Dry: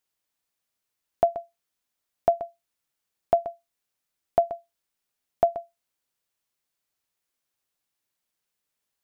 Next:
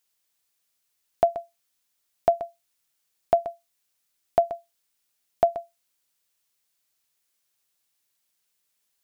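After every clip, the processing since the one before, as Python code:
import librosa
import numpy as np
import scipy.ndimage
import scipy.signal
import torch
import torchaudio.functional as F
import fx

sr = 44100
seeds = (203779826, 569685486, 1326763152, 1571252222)

y = fx.high_shelf(x, sr, hz=2200.0, db=8.5)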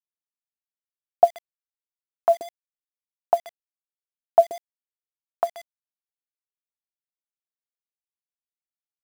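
y = fx.filter_lfo_bandpass(x, sr, shape='sine', hz=2.4, low_hz=340.0, high_hz=2500.0, q=2.6)
y = fx.quant_dither(y, sr, seeds[0], bits=8, dither='none')
y = F.gain(torch.from_numpy(y), 7.0).numpy()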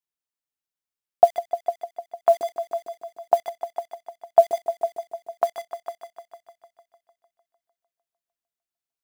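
y = fx.echo_heads(x, sr, ms=151, heads='all three', feedback_pct=44, wet_db=-14.0)
y = F.gain(torch.from_numpy(y), 1.5).numpy()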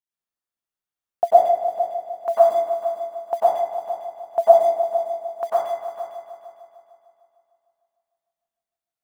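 y = fx.rev_plate(x, sr, seeds[1], rt60_s=0.82, hf_ratio=0.3, predelay_ms=85, drr_db=-8.5)
y = F.gain(torch.from_numpy(y), -7.5).numpy()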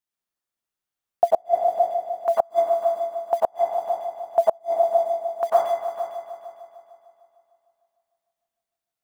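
y = fx.gate_flip(x, sr, shuts_db=-8.0, range_db=-36)
y = F.gain(torch.from_numpy(y), 2.5).numpy()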